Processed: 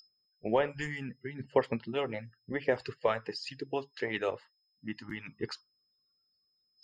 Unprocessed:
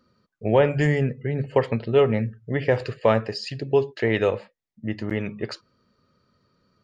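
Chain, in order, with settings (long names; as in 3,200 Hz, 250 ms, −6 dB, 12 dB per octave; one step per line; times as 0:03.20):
steady tone 5,100 Hz −35 dBFS
harmonic and percussive parts rebalanced harmonic −15 dB
noise reduction from a noise print of the clip's start 19 dB
level −5.5 dB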